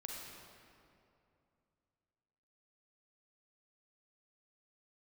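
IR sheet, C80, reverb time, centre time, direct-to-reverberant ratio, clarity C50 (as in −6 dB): 0.5 dB, 2.6 s, 124 ms, −2.0 dB, −1.0 dB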